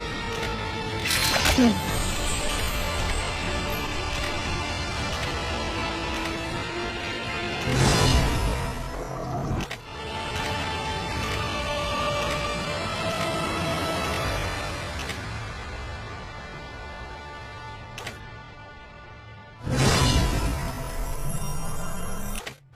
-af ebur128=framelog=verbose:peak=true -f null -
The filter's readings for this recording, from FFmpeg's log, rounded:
Integrated loudness:
  I:         -26.8 LUFS
  Threshold: -37.3 LUFS
Loudness range:
  LRA:        11.4 LU
  Threshold: -47.5 LUFS
  LRA low:   -35.7 LUFS
  LRA high:  -24.2 LUFS
True peak:
  Peak:       -9.7 dBFS